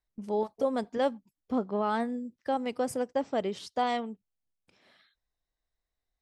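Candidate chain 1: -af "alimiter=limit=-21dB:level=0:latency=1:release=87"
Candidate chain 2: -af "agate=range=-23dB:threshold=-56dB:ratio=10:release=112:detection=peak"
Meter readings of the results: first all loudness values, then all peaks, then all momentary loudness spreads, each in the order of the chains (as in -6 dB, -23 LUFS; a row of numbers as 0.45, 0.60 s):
-33.0, -31.5 LUFS; -21.0, -17.0 dBFS; 4, 5 LU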